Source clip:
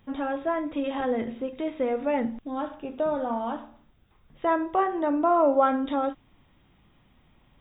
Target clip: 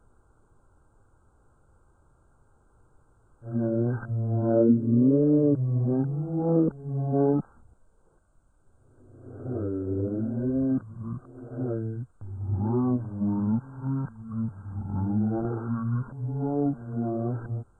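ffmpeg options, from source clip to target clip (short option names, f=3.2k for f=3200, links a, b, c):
-af "areverse,asetrate=18846,aresample=44100"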